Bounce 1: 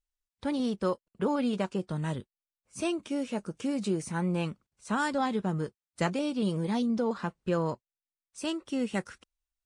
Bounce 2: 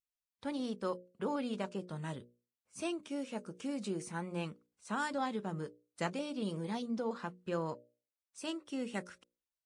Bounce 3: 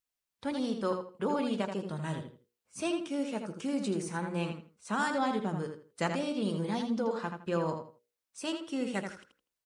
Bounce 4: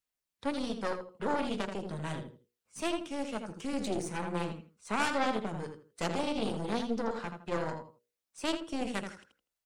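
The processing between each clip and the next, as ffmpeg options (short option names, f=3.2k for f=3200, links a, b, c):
-af "highpass=f=170:p=1,bandreject=f=60:t=h:w=6,bandreject=f=120:t=h:w=6,bandreject=f=180:t=h:w=6,bandreject=f=240:t=h:w=6,bandreject=f=300:t=h:w=6,bandreject=f=360:t=h:w=6,bandreject=f=420:t=h:w=6,bandreject=f=480:t=h:w=6,bandreject=f=540:t=h:w=6,bandreject=f=600:t=h:w=6,volume=-6dB"
-filter_complex "[0:a]asplit=2[a][b];[b]adelay=81,lowpass=f=4.6k:p=1,volume=-6dB,asplit=2[c][d];[d]adelay=81,lowpass=f=4.6k:p=1,volume=0.25,asplit=2[e][f];[f]adelay=81,lowpass=f=4.6k:p=1,volume=0.25[g];[a][c][e][g]amix=inputs=4:normalize=0,volume=4.5dB"
-filter_complex "[0:a]aphaser=in_gain=1:out_gain=1:delay=1.5:decay=0.23:speed=0.47:type=sinusoidal,aeval=exprs='0.168*(cos(1*acos(clip(val(0)/0.168,-1,1)))-cos(1*PI/2))+0.0596*(cos(4*acos(clip(val(0)/0.168,-1,1)))-cos(4*PI/2))':c=same,acrossover=split=210[a][b];[a]asoftclip=type=tanh:threshold=-36dB[c];[c][b]amix=inputs=2:normalize=0,volume=-1.5dB"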